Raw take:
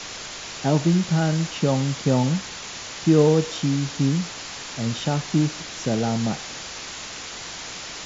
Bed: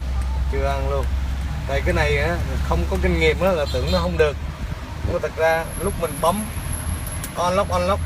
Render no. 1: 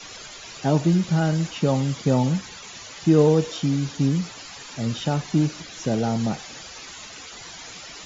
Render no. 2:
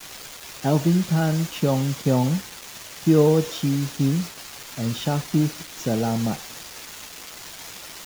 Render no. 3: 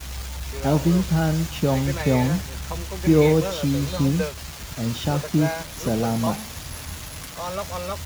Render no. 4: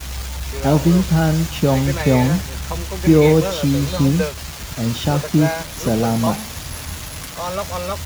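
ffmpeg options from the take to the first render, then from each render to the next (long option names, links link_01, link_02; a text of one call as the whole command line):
ffmpeg -i in.wav -af "afftdn=noise_reduction=12:noise_floor=-36" out.wav
ffmpeg -i in.wav -af "acrusher=bits=5:mix=0:aa=0.000001" out.wav
ffmpeg -i in.wav -i bed.wav -filter_complex "[1:a]volume=-10.5dB[link_01];[0:a][link_01]amix=inputs=2:normalize=0" out.wav
ffmpeg -i in.wav -af "volume=5dB,alimiter=limit=-2dB:level=0:latency=1" out.wav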